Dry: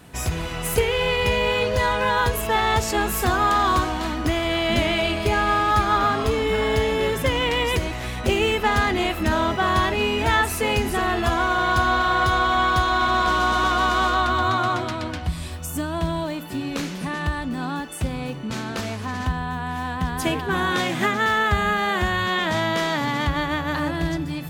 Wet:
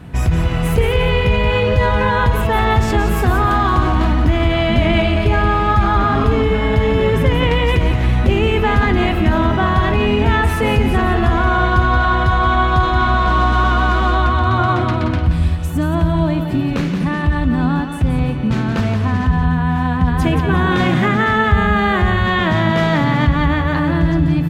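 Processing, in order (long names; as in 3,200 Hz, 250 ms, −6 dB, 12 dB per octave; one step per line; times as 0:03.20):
bass and treble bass +10 dB, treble −12 dB
in parallel at −1.5 dB: compressor whose output falls as the input rises −21 dBFS
on the sum: repeating echo 176 ms, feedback 31%, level −8 dB
level −1 dB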